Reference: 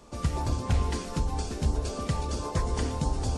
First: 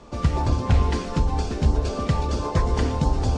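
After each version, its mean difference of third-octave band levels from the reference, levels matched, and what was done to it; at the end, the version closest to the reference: 2.5 dB: air absorption 99 m; gain +7 dB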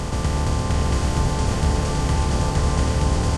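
4.0 dB: per-bin compression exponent 0.2; on a send: echo 0.784 s -4.5 dB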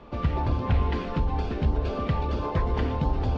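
5.5 dB: LPF 3300 Hz 24 dB/oct; in parallel at -1 dB: limiter -27 dBFS, peak gain reduction 10.5 dB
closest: first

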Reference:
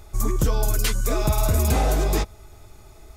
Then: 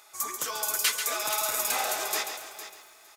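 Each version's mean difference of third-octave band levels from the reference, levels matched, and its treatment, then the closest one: 11.5 dB: HPF 1100 Hz 12 dB/oct; feedback echo 0.458 s, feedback 16%, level -12.5 dB; spring tank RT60 2.2 s, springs 56 ms, chirp 60 ms, DRR 14.5 dB; lo-fi delay 0.138 s, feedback 35%, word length 9-bit, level -8 dB; gain +1.5 dB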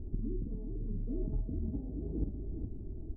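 21.5 dB: negative-ratio compressor -26 dBFS, ratio -0.5; ladder low-pass 320 Hz, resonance 55%; on a send: tapped delay 49/404 ms -6/-6.5 dB; on the sum: record warp 45 rpm, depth 100 cents; gain +3.5 dB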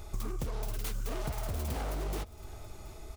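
6.5 dB: self-modulated delay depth 0.52 ms; bell 1700 Hz -3 dB 0.43 oct; compressor 8:1, threshold -32 dBFS, peak gain reduction 16 dB; on a send: echo 0.727 s -19.5 dB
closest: third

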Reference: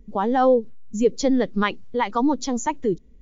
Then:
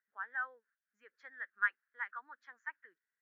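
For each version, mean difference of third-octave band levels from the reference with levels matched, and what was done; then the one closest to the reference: 11.0 dB: Butterworth band-pass 1600 Hz, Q 4.1; gain -1 dB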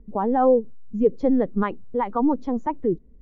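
3.0 dB: LPF 1100 Hz 12 dB/oct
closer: second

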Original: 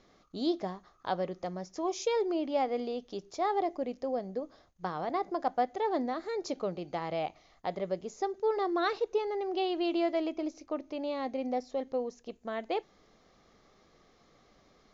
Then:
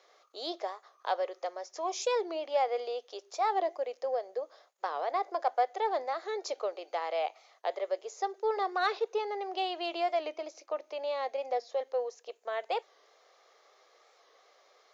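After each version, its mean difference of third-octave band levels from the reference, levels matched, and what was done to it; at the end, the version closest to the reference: 5.5 dB: steep high-pass 450 Hz 36 dB/oct; in parallel at -9 dB: soft clip -27.5 dBFS, distortion -15 dB; on the sum: record warp 45 rpm, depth 100 cents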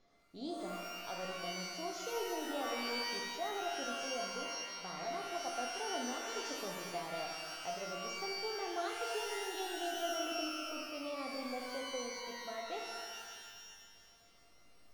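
14.5 dB: resonator 690 Hz, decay 0.42 s, mix 90%; in parallel at +0.5 dB: limiter -44.5 dBFS, peak gain reduction 11.5 dB; on the sum: shimmer reverb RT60 1.8 s, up +12 st, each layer -2 dB, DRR 1 dB; gain +1 dB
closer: first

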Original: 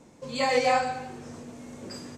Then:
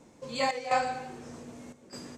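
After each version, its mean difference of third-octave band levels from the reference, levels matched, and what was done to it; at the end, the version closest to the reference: 3.5 dB: notches 50/100/150/200/250 Hz; step gate "xxxxx..xxxxx" 148 bpm -12 dB; gain -2 dB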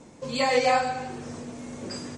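2.5 dB: in parallel at -2.5 dB: compressor 4:1, threshold -33 dBFS, peak gain reduction 12.5 dB; on the sum: MP3 48 kbps 44100 Hz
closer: second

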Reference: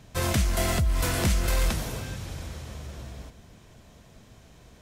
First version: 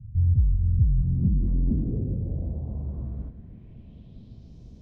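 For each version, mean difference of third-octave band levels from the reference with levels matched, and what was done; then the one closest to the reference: 19.5 dB: EQ curve 230 Hz 0 dB, 1600 Hz -28 dB, 13000 Hz +13 dB; overloaded stage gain 28.5 dB; low-pass sweep 100 Hz -> 5900 Hz, 0.7–4.6; air absorption 350 m; gain +8 dB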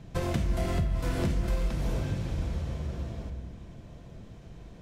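6.0 dB: LPF 1600 Hz 6 dB/oct; bell 1200 Hz -5 dB 2.4 oct; compressor 12:1, threshold -30 dBFS, peak gain reduction 11 dB; shoebox room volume 720 m³, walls mixed, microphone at 0.78 m; gain +4.5 dB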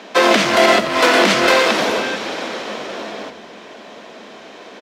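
8.5 dB: elliptic high-pass 200 Hz; three-band isolator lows -16 dB, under 280 Hz, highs -23 dB, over 4900 Hz; frequency-shifting echo 85 ms, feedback 33%, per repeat -64 Hz, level -15 dB; maximiser +23 dB; gain -1.5 dB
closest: second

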